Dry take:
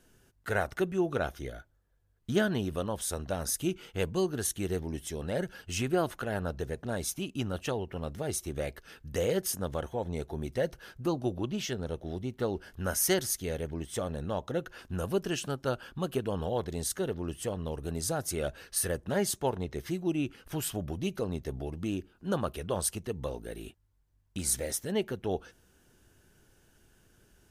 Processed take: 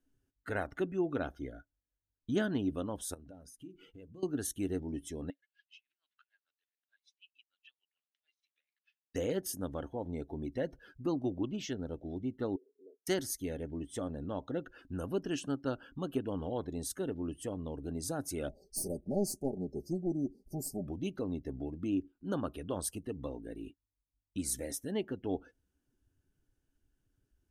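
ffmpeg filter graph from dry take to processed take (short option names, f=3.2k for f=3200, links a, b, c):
-filter_complex "[0:a]asettb=1/sr,asplit=3[a][b][c];[a]atrim=end=3.144[d];[b]atrim=start=3.14:end=4.23,asetpts=PTS-STARTPTS,afade=t=in:d=0.004:c=qsin,afade=t=out:st=1.086:d=0.004:c=qsin,acompressor=threshold=-44dB:ratio=6:attack=3.2:release=140:knee=1:detection=peak,bandreject=f=50:t=h:w=6,bandreject=f=100:t=h:w=6,bandreject=f=150:t=h:w=6,bandreject=f=200:t=h:w=6,bandreject=f=250:t=h:w=6,bandreject=f=300:t=h:w=6,bandreject=f=350:t=h:w=6,bandreject=f=400:t=h:w=6[e];[c]atrim=start=4.226[f];[d][e]acrossfade=d=0.004:c1=hsin:c2=qsin[g];[g][f]acrossfade=d=0.004:c1=qsin:c2=hsin,asettb=1/sr,asplit=3[h][i][j];[h]atrim=end=5.304[k];[i]atrim=start=5.3:end=9.15,asetpts=PTS-STARTPTS,afade=t=in:d=0.004:c=qsin,afade=t=out:st=3.846:d=0.004:c=qsin,acompressor=threshold=-36dB:ratio=12:attack=3.2:release=140:knee=1:detection=peak,asuperpass=centerf=3000:order=4:qfactor=1.2,aeval=exprs='val(0)*pow(10,-21*(0.5-0.5*cos(2*PI*6.7*n/s))/20)':c=same[l];[j]atrim=start=9.146[m];[k][l]acrossfade=d=0.004:c1=hsin:c2=qsin[n];[n][m]acrossfade=d=0.004:c1=qsin:c2=hsin,asettb=1/sr,asplit=3[o][p][q];[o]atrim=end=12.564[r];[p]atrim=start=12.56:end=13.07,asetpts=PTS-STARTPTS,afade=t=in:d=0.004:c=qsin,afade=t=out:st=0.506:d=0.004:c=qsin,aecho=1:1:4.6:0.9,atrim=end_sample=22491,acompressor=threshold=-42dB:ratio=2.5:attack=3.2:release=140:knee=1:detection=peak,asuperpass=centerf=400:order=4:qfactor=3.1[s];[q]atrim=start=13.066[t];[r][s]acrossfade=d=0.004:c1=hsin:c2=qsin[u];[u][t]acrossfade=d=0.004:c1=qsin:c2=hsin,asettb=1/sr,asplit=3[v][w][x];[v]atrim=end=18.494[y];[w]atrim=start=18.49:end=20.88,asetpts=PTS-STARTPTS,afade=t=in:d=0.004:c=qsin,afade=t=out:st=2.386:d=0.004:c=qsin,aecho=1:1:5.1:0.7,atrim=end_sample=105399,aeval=exprs='clip(val(0),-1,0.0316)':c=same,asuperstop=centerf=1900:order=20:qfactor=0.53[z];[x]atrim=start=20.876[aa];[y][z]acrossfade=d=0.004:c1=hsin:c2=qsin[ab];[ab][aa]acrossfade=d=0.004:c1=qsin:c2=hsin,afftdn=nr=16:nf=-49,equalizer=f=280:w=4.2:g=13.5,volume=-6.5dB"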